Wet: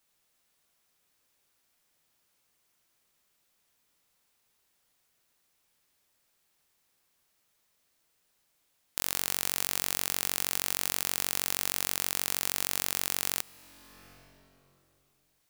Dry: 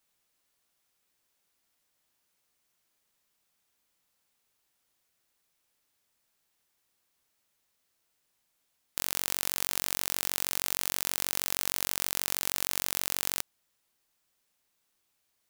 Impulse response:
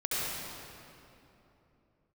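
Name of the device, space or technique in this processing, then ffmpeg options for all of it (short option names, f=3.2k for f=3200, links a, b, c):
ducked reverb: -filter_complex "[0:a]asplit=3[a][b][c];[1:a]atrim=start_sample=2205[d];[b][d]afir=irnorm=-1:irlink=0[e];[c]apad=whole_len=683353[f];[e][f]sidechaincompress=threshold=-45dB:ratio=5:attack=28:release=476,volume=-10dB[g];[a][g]amix=inputs=2:normalize=0"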